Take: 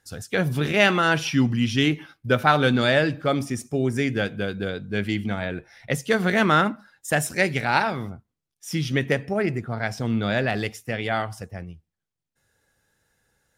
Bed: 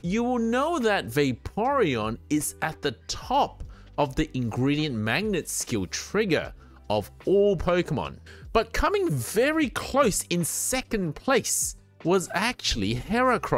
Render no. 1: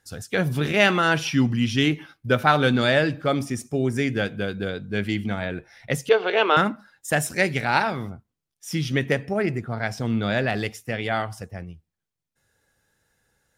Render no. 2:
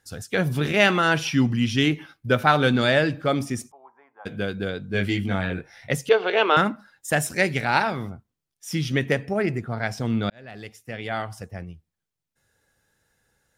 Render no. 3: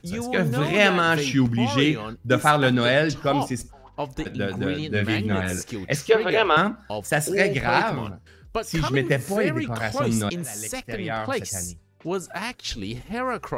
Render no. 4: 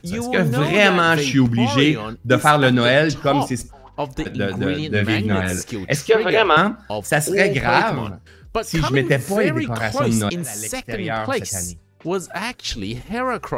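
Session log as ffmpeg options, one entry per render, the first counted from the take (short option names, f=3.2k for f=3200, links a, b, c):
-filter_complex "[0:a]asettb=1/sr,asplit=3[a][b][c];[a]atrim=end=6.094[d];[b]atrim=start=6.09:end=6.57,asetpts=PTS-STARTPTS,afade=t=in:d=0.004:c=qsin,afade=t=out:st=0.476:d=0.004:c=qsin,highpass=f=370:w=0.5412,highpass=f=370:w=1.3066,equalizer=f=440:t=q:w=4:g=7,equalizer=f=870:t=q:w=4:g=5,equalizer=f=1.9k:t=q:w=4:g=-8,equalizer=f=2.8k:t=q:w=4:g=10,lowpass=f=4.3k:w=0.5412,lowpass=f=4.3k:w=1.3066[e];[c]atrim=start=6.566[f];[d][e]acrossfade=d=0.004:c1=hsin:c2=qsin[g];[g][f]acrossfade=d=0.004:c1=qsin:c2=hsin"
-filter_complex "[0:a]asplit=3[a][b][c];[a]afade=t=out:st=3.7:d=0.02[d];[b]asuperpass=centerf=940:order=4:qfactor=3.5,afade=t=in:st=3.7:d=0.02,afade=t=out:st=4.25:d=0.02[e];[c]afade=t=in:st=4.25:d=0.02[f];[d][e][f]amix=inputs=3:normalize=0,asettb=1/sr,asplit=3[g][h][i];[g]atrim=end=4.924[j];[h]atrim=start=4.92:end=5.93,asetpts=PTS-STARTPTS,afade=t=in:d=0.004:c=qsin,afade=t=out:st=1.006:d=0.004:c=qsin,asplit=2[k][l];[l]adelay=21,volume=-2.5dB[m];[k][m]amix=inputs=2:normalize=0,atrim=end_sample=44541[n];[i]atrim=start=5.926[o];[j][n]acrossfade=d=0.004:c1=hsin:c2=qsin[p];[p][o]acrossfade=d=0.004:c1=qsin:c2=hsin,asplit=2[q][r];[q]atrim=end=10.3,asetpts=PTS-STARTPTS,afade=t=out:st=10.296:d=0.004:c=hsin[s];[r]atrim=start=10.3,asetpts=PTS-STARTPTS,afade=t=in:d=1.27[t];[s][t]concat=n=2:v=0:a=1"
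-filter_complex "[1:a]volume=-5dB[a];[0:a][a]amix=inputs=2:normalize=0"
-af "volume=4.5dB,alimiter=limit=-1dB:level=0:latency=1"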